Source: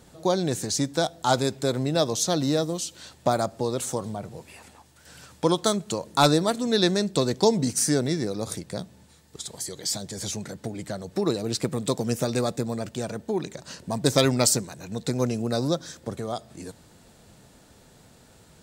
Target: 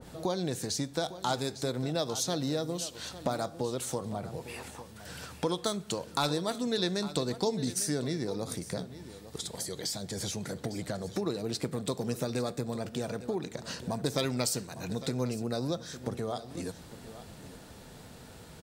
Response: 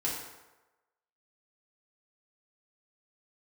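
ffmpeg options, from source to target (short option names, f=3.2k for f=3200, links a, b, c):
-filter_complex "[0:a]acompressor=threshold=-39dB:ratio=2.5,equalizer=f=7.2k:t=o:w=0.62:g=-4.5,aecho=1:1:854:0.188,asplit=2[a][b];[1:a]atrim=start_sample=2205,asetrate=70560,aresample=44100[c];[b][c]afir=irnorm=-1:irlink=0,volume=-16dB[d];[a][d]amix=inputs=2:normalize=0,adynamicequalizer=threshold=0.01:dfrequency=1800:dqfactor=0.7:tfrequency=1800:tqfactor=0.7:attack=5:release=100:ratio=0.375:range=2:mode=boostabove:tftype=highshelf,volume=3.5dB"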